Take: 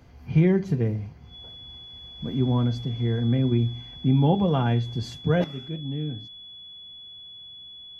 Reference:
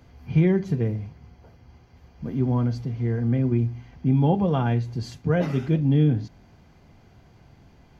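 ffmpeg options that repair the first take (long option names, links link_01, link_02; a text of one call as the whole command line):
ffmpeg -i in.wav -af "bandreject=frequency=3400:width=30,asetnsamples=nb_out_samples=441:pad=0,asendcmd='5.44 volume volume 11.5dB',volume=0dB" out.wav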